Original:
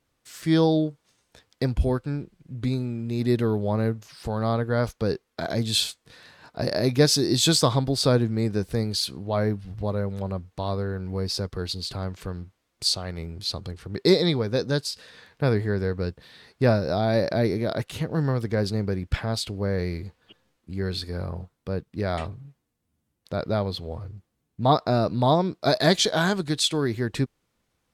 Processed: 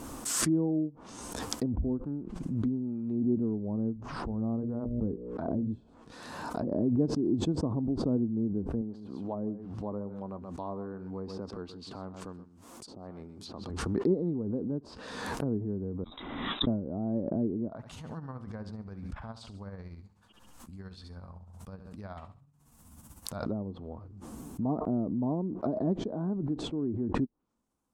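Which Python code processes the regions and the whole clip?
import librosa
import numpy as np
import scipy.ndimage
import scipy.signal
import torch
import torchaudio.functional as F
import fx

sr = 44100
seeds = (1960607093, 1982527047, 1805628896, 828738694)

y = fx.chain(x, sr, fx.low_shelf(hz=74.0, db=11.5),
    fx.hum_notches(base_hz=60, count=10),
    fx.pre_swell(db_per_s=37.0), at=(3.96, 5.81))
y = fx.chain(y, sr, fx.highpass(hz=190.0, slope=6),
    fx.echo_single(ms=128, db=-14.0), at=(8.81, 13.7))
y = fx.chain(y, sr, fx.freq_invert(carrier_hz=3800),
    fx.band_squash(depth_pct=40), at=(16.04, 16.67))
y = fx.chain(y, sr, fx.tremolo(hz=16.0, depth=0.64),
    fx.peak_eq(hz=340.0, db=-14.5, octaves=1.6),
    fx.echo_feedback(ms=69, feedback_pct=30, wet_db=-13.5), at=(17.68, 23.46))
y = fx.env_lowpass_down(y, sr, base_hz=410.0, full_db=-22.0)
y = fx.graphic_eq_10(y, sr, hz=(125, 250, 500, 1000, 2000, 4000, 8000), db=(-6, 9, -3, 6, -10, -8, 4))
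y = fx.pre_swell(y, sr, db_per_s=37.0)
y = y * 10.0 ** (-9.0 / 20.0)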